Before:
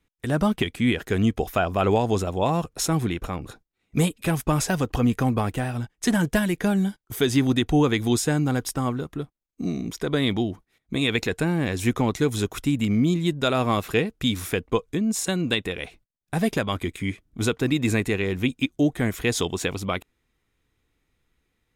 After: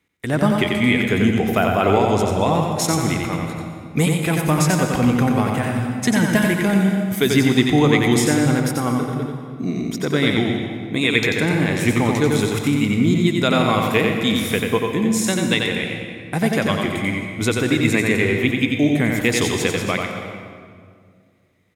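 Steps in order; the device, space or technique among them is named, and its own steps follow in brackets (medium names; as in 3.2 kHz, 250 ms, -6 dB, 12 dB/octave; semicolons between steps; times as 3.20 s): PA in a hall (high-pass 100 Hz; peaking EQ 2.1 kHz +7.5 dB 0.25 oct; delay 90 ms -4 dB; reverberation RT60 2.1 s, pre-delay 110 ms, DRR 5.5 dB); 8.60–9.76 s: peaking EQ 7.5 kHz -3 dB 2.3 oct; trim +3 dB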